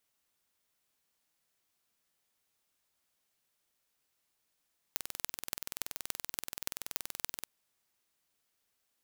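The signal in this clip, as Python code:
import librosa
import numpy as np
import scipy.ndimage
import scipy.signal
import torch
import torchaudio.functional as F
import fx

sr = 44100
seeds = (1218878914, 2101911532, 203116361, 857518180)

y = fx.impulse_train(sr, length_s=2.5, per_s=21.0, accent_every=6, level_db=-5.0)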